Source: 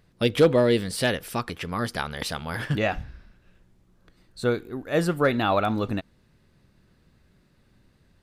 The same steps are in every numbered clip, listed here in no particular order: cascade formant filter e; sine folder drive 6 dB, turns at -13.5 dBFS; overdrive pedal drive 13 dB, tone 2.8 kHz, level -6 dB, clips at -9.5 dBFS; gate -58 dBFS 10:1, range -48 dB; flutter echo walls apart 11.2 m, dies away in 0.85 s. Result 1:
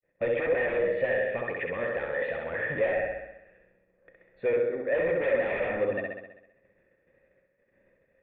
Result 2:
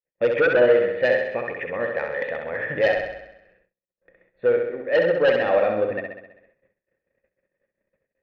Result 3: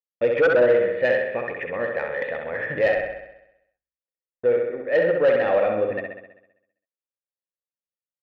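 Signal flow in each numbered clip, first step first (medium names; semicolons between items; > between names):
gate > overdrive pedal > flutter echo > sine folder > cascade formant filter; cascade formant filter > overdrive pedal > sine folder > flutter echo > gate; cascade formant filter > gate > sine folder > flutter echo > overdrive pedal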